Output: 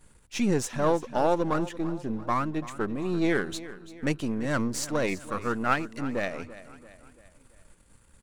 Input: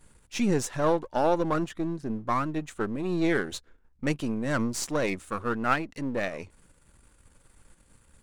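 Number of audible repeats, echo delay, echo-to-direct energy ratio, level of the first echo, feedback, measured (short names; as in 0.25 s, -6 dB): 4, 0.337 s, -15.0 dB, -16.0 dB, 49%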